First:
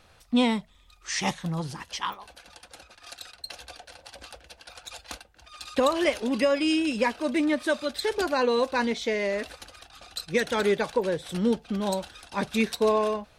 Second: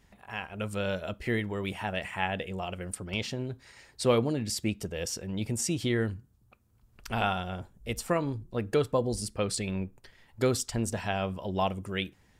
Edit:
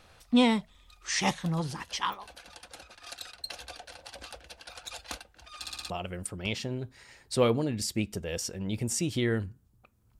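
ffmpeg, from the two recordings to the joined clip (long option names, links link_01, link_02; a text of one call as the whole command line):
ffmpeg -i cue0.wav -i cue1.wav -filter_complex "[0:a]apad=whole_dur=10.19,atrim=end=10.19,asplit=5[link_01][link_02][link_03][link_04][link_05];[link_01]atrim=end=5.662[link_06];[link_02]atrim=start=5.598:end=5.662[link_07];[link_03]atrim=start=5.598:end=5.662[link_08];[link_04]atrim=start=5.598:end=5.662[link_09];[link_05]atrim=start=5.598:end=5.662[link_10];[1:a]atrim=start=2.578:end=6.87[link_11];[link_06][link_07]acrossfade=duration=0.004:curve1=hsin:curve2=hsin[link_12];[link_12][link_08]acrossfade=duration=0.004:curve1=hsin:curve2=hsin[link_13];[link_13][link_09]acrossfade=duration=0.004:curve1=hsin:curve2=hsin[link_14];[link_14][link_10]acrossfade=duration=0.004:curve1=hsin:curve2=hsin[link_15];[link_15][link_11]acrossfade=duration=0.004:curve1=hsin:curve2=hsin" out.wav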